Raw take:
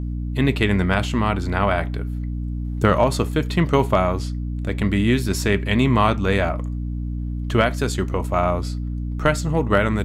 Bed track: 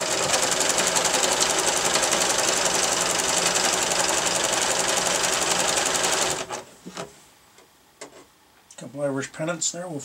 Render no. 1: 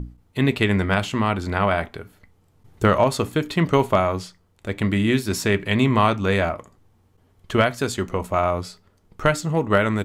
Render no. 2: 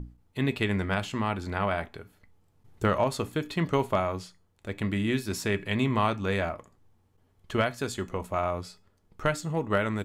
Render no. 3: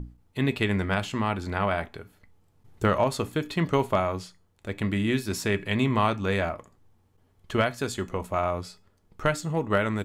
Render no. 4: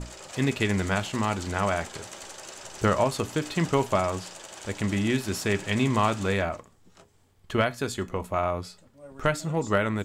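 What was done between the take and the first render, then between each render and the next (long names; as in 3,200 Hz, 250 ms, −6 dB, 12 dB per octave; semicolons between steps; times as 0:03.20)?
mains-hum notches 60/120/180/240/300 Hz
tuned comb filter 840 Hz, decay 0.31 s, mix 60%
level +2 dB
mix in bed track −20.5 dB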